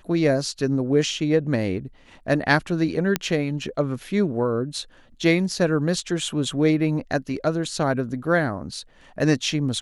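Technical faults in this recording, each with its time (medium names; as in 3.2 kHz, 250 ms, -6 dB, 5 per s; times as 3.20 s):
3.16 s: pop -5 dBFS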